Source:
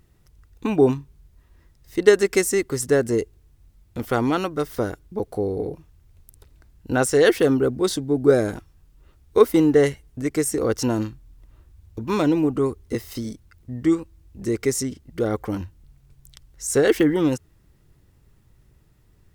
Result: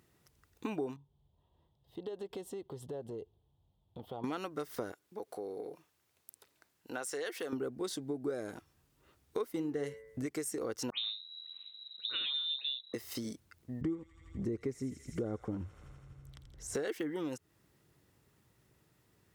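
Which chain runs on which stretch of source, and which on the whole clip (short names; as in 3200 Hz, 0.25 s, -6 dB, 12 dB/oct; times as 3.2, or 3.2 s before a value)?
0.96–4.24 EQ curve 160 Hz 0 dB, 260 Hz -9 dB, 890 Hz 0 dB, 1400 Hz -20 dB, 2300 Hz -23 dB, 3300 Hz -2 dB, 5800 Hz -26 dB, 15000 Hz -21 dB + compressor 5:1, threshold -33 dBFS
4.92–7.53 HPF 590 Hz 6 dB/oct + compressor 1.5:1, threshold -41 dBFS
9.52–10.26 low shelf 240 Hz +7.5 dB + de-hum 110.5 Hz, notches 20
10.9–12.94 dispersion lows, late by 74 ms, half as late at 1600 Hz + inverted band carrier 3900 Hz
13.81–16.75 tilt -4.5 dB/oct + thin delay 83 ms, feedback 77%, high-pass 2200 Hz, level -8 dB
whole clip: HPF 91 Hz 12 dB/oct; low shelf 180 Hz -10 dB; compressor 5:1, threshold -32 dBFS; gain -3.5 dB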